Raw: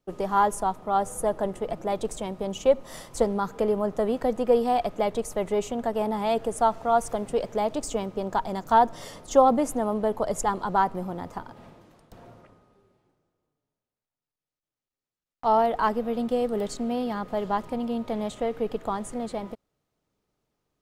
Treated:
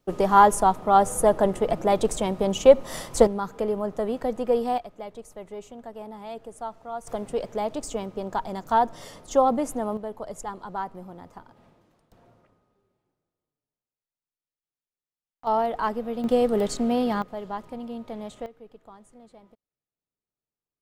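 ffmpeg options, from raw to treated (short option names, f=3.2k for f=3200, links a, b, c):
-af "asetnsamples=n=441:p=0,asendcmd='3.27 volume volume -2dB;4.78 volume volume -12.5dB;7.07 volume volume -2dB;9.97 volume volume -9dB;15.47 volume volume -2.5dB;16.24 volume volume 4.5dB;17.22 volume volume -6.5dB;18.46 volume volume -19dB',volume=6.5dB"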